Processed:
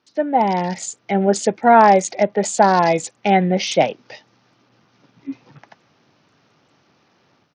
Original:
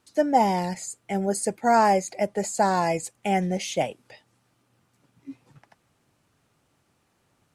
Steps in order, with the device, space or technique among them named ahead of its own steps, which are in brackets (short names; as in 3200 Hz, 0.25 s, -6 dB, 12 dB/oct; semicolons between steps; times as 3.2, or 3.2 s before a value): Bluetooth headset (HPF 150 Hz 12 dB/oct; AGC gain up to 10 dB; downsampling 16000 Hz; gain +1 dB; SBC 64 kbps 48000 Hz)